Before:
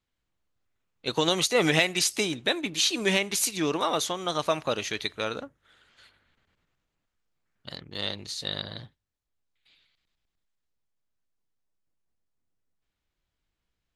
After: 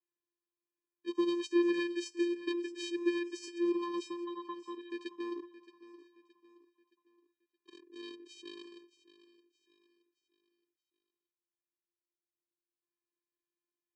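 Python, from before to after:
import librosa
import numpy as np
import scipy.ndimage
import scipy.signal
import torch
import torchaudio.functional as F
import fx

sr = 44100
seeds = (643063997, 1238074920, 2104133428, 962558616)

y = fx.vocoder(x, sr, bands=8, carrier='square', carrier_hz=346.0)
y = fx.cheby_ripple(y, sr, hz=4000.0, ripple_db=9, at=(4.24, 4.9), fade=0.02)
y = fx.echo_feedback(y, sr, ms=621, feedback_pct=40, wet_db=-16.0)
y = y * librosa.db_to_amplitude(-7.0)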